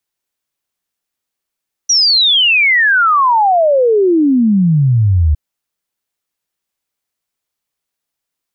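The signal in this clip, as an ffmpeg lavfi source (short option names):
-f lavfi -i "aevalsrc='0.422*clip(min(t,3.46-t)/0.01,0,1)*sin(2*PI*5900*3.46/log(72/5900)*(exp(log(72/5900)*t/3.46)-1))':d=3.46:s=44100"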